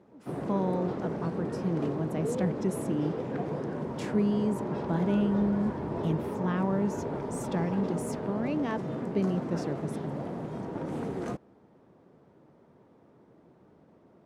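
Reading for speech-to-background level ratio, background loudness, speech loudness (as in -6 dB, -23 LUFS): 3.0 dB, -35.0 LUFS, -32.0 LUFS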